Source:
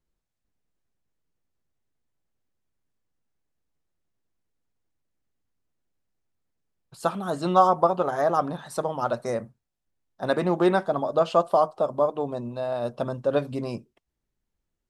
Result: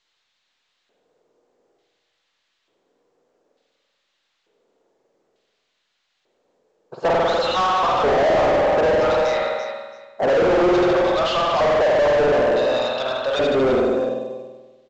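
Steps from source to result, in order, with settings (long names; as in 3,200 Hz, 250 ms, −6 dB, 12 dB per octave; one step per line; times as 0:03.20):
auto-filter band-pass square 0.56 Hz 460–3,900 Hz
on a send: repeating echo 335 ms, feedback 18%, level −13.5 dB
on the sum: spring reverb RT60 1.2 s, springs 48 ms, chirp 40 ms, DRR −1 dB
mid-hump overdrive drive 37 dB, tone 1,400 Hz, clips at −11 dBFS
in parallel at −4 dB: gain into a clipping stage and back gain 17 dB
on the sum: level −2.5 dB
mu-law 128 kbit/s 16,000 Hz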